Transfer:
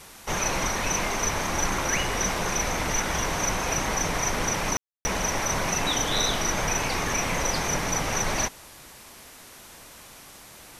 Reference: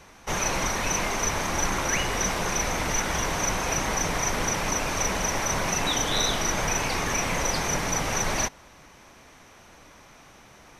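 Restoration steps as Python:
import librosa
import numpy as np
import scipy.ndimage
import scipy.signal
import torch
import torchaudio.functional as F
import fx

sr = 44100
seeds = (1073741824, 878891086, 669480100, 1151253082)

y = fx.fix_ambience(x, sr, seeds[0], print_start_s=10.2, print_end_s=10.7, start_s=4.77, end_s=5.05)
y = fx.noise_reduce(y, sr, print_start_s=10.2, print_end_s=10.7, reduce_db=6.0)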